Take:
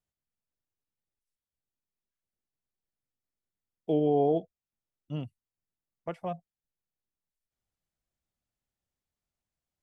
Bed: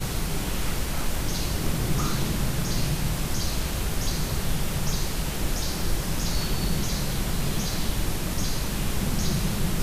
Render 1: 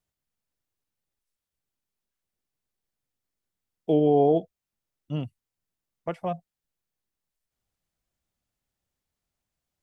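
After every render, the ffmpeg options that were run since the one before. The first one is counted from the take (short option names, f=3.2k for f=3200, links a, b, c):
-af "volume=5dB"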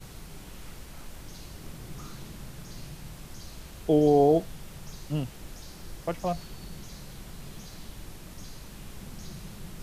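-filter_complex "[1:a]volume=-16.5dB[a];[0:a][a]amix=inputs=2:normalize=0"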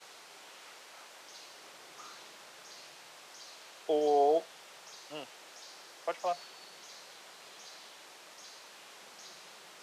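-filter_complex "[0:a]highpass=350,acrossover=split=460 7900:gain=0.141 1 0.2[a][b][c];[a][b][c]amix=inputs=3:normalize=0"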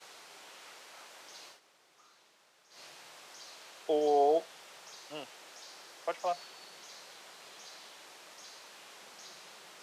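-filter_complex "[0:a]asplit=3[a][b][c];[a]atrim=end=1.6,asetpts=PTS-STARTPTS,afade=t=out:st=1.48:d=0.12:silence=0.211349[d];[b]atrim=start=1.6:end=2.7,asetpts=PTS-STARTPTS,volume=-13.5dB[e];[c]atrim=start=2.7,asetpts=PTS-STARTPTS,afade=t=in:d=0.12:silence=0.211349[f];[d][e][f]concat=n=3:v=0:a=1"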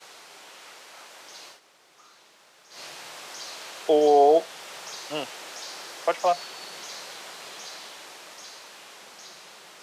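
-filter_complex "[0:a]asplit=2[a][b];[b]alimiter=level_in=2.5dB:limit=-24dB:level=0:latency=1:release=479,volume=-2.5dB,volume=-1.5dB[c];[a][c]amix=inputs=2:normalize=0,dynaudnorm=f=280:g=17:m=7dB"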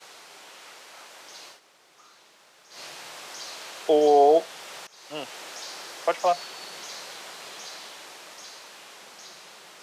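-filter_complex "[0:a]asplit=2[a][b];[a]atrim=end=4.87,asetpts=PTS-STARTPTS,afade=t=out:st=4.866:d=0.004:c=hsin:silence=0.0707946[c];[b]atrim=start=4.87,asetpts=PTS-STARTPTS,afade=t=in:d=0.5:silence=0.0707946[d];[c][d]concat=n=2:v=0:a=1"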